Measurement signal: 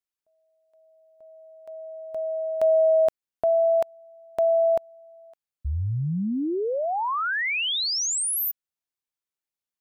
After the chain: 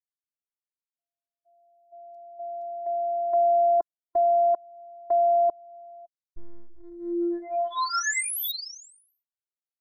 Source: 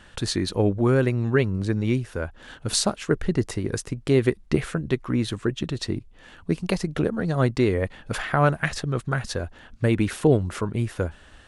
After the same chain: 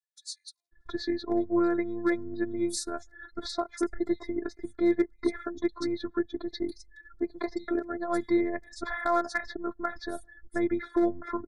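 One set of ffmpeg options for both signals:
-filter_complex "[0:a]afftdn=nr=36:nf=-39,bass=f=250:g=-6,treble=f=4k:g=-5,asplit=2[a][b];[b]acompressor=threshold=-31dB:ratio=12:attack=0.12:release=318:knee=1:detection=rms,volume=3dB[c];[a][c]amix=inputs=2:normalize=0,acrossover=split=4500[d][e];[d]adelay=720[f];[f][e]amix=inputs=2:normalize=0,volume=11dB,asoftclip=hard,volume=-11dB,afftfilt=real='hypot(re,im)*cos(PI*b)':imag='0':win_size=512:overlap=0.75,asuperstop=centerf=2800:order=8:qfactor=2.2,volume=-2dB"

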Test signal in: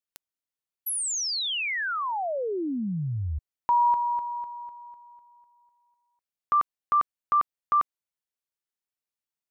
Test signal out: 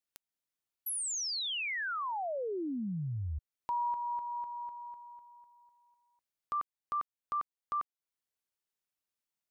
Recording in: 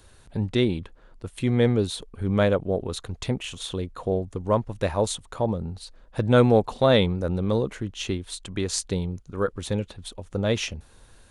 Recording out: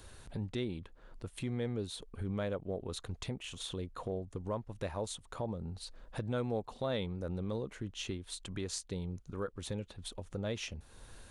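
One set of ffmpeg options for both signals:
-af "acompressor=threshold=-37dB:ratio=2.5:attack=0.28:release=617:knee=6:detection=peak"

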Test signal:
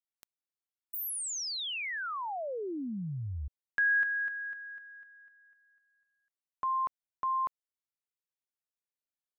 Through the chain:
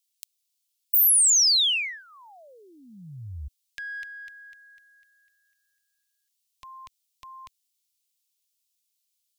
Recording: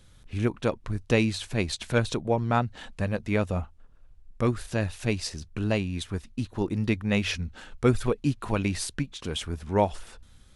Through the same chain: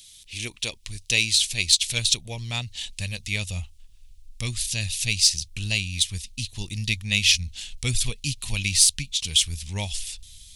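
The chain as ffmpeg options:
-af "asubboost=boost=8.5:cutoff=120,aexciter=amount=15.3:drive=8.3:freq=2.3k,volume=-12.5dB"

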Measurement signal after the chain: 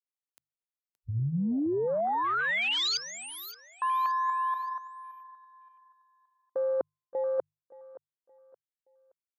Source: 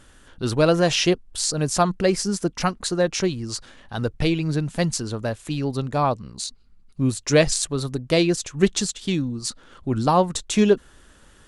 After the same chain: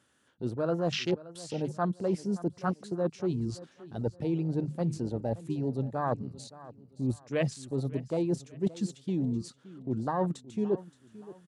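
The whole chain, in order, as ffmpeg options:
-filter_complex "[0:a]highpass=f=100:w=0.5412,highpass=f=100:w=1.3066,bandreject=f=50:t=h:w=6,bandreject=f=100:t=h:w=6,bandreject=f=150:t=h:w=6,acrossover=split=3500[a][b];[b]acompressor=threshold=-27dB:ratio=4:attack=1:release=60[c];[a][c]amix=inputs=2:normalize=0,afwtdn=0.0562,areverse,acompressor=threshold=-28dB:ratio=6,areverse,aecho=1:1:572|1144|1716:0.126|0.0403|0.0129,volume=1dB"

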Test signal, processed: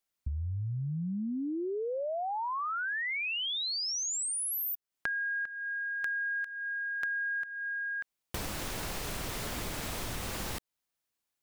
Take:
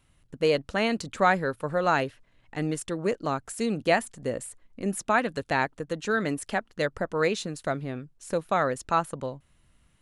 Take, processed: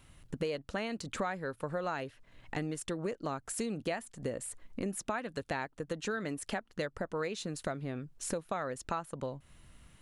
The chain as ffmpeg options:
-af "acompressor=threshold=-40dB:ratio=6,volume=6dB"

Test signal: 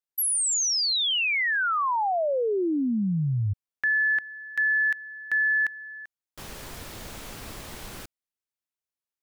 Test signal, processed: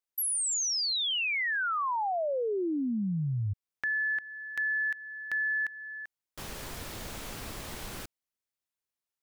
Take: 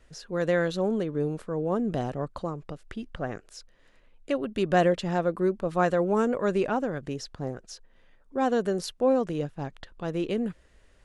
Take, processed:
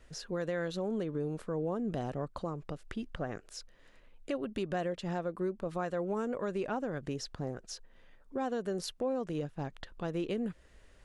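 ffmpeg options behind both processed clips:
-af "acompressor=threshold=-28dB:ratio=6:attack=1.3:release=678:knee=6:detection=peak"

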